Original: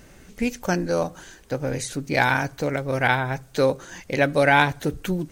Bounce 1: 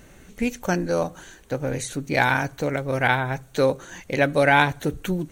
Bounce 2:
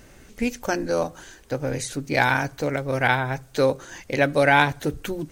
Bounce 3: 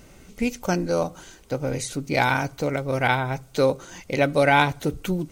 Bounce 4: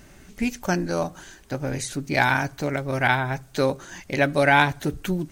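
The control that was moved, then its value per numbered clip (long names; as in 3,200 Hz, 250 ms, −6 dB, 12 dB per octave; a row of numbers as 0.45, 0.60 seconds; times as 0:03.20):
notch filter, centre frequency: 5,000, 180, 1,700, 490 Hertz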